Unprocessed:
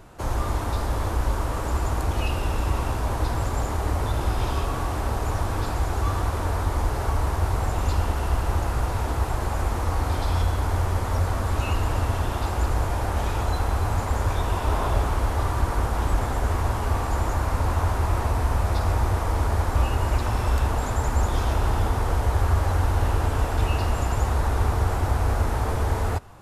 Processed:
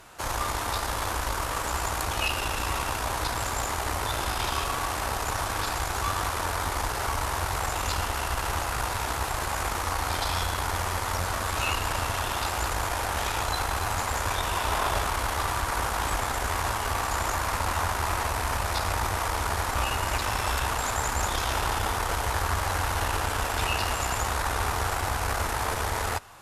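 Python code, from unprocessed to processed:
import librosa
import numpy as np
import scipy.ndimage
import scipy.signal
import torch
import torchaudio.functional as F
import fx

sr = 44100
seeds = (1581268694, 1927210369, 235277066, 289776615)

y = fx.cheby_harmonics(x, sr, harmonics=(6, 8), levels_db=(-22, -43), full_scale_db=-9.0)
y = fx.tilt_shelf(y, sr, db=-8.5, hz=690.0)
y = F.gain(torch.from_numpy(y), -1.5).numpy()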